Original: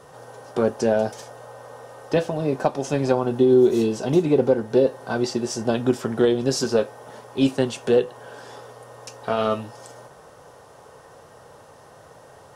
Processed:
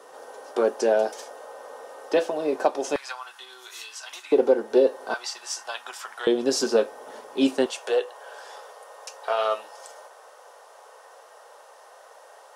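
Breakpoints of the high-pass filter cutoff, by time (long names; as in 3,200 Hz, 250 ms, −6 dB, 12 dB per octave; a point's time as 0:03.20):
high-pass filter 24 dB per octave
310 Hz
from 0:02.96 1,200 Hz
from 0:04.32 300 Hz
from 0:05.14 900 Hz
from 0:06.27 250 Hz
from 0:07.66 530 Hz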